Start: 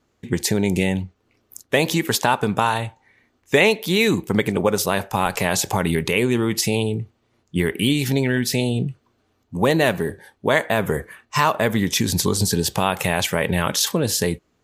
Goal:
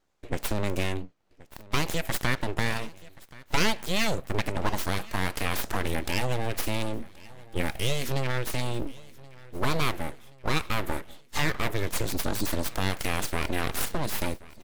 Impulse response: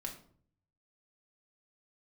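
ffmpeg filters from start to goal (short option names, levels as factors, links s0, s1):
-af "aeval=exprs='abs(val(0))':c=same,aecho=1:1:1077|2154|3231|4308:0.0841|0.0454|0.0245|0.0132,volume=0.501"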